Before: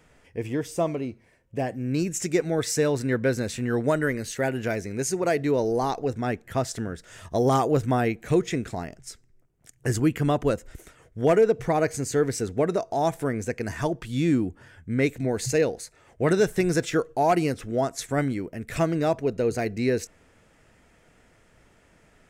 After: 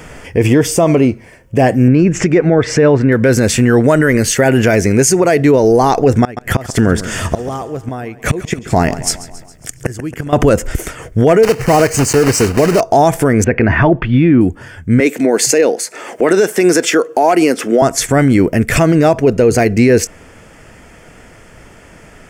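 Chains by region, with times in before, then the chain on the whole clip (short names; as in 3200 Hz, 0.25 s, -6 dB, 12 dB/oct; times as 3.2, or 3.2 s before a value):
1.88–3.12 LPF 2200 Hz + upward compressor, threshold -28 dBFS
6.23–10.33 flipped gate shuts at -19 dBFS, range -26 dB + feedback echo 0.137 s, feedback 56%, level -17.5 dB
11.43–12.82 block floating point 3-bit + Butterworth band-stop 3400 Hz, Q 6.1 + high shelf 11000 Hz -9 dB
13.44–14.41 LPF 2700 Hz 24 dB/oct + notch 470 Hz, Q 11
15–17.82 HPF 240 Hz 24 dB/oct + upward compressor, threshold -35 dBFS
whole clip: notch 3900 Hz, Q 6.3; vocal rider within 5 dB 0.5 s; maximiser +20.5 dB; gain -1 dB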